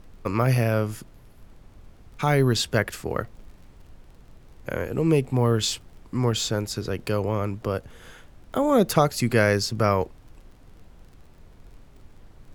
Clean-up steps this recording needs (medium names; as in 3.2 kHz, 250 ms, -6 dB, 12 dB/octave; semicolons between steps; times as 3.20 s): de-click; noise print and reduce 19 dB